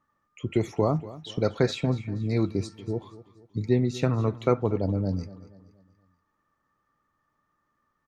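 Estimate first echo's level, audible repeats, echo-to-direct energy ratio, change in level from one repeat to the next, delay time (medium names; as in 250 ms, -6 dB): -17.5 dB, 3, -16.5 dB, -7.5 dB, 238 ms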